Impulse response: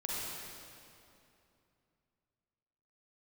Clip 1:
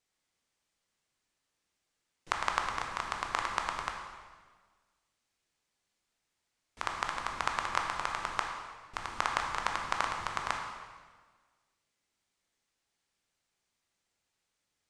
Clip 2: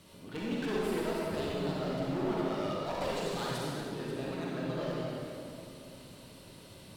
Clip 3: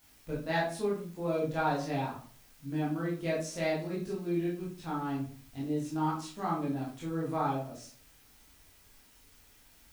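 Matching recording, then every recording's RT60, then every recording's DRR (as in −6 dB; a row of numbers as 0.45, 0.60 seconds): 2; 1.5, 2.7, 0.45 seconds; 1.0, −6.0, −7.0 decibels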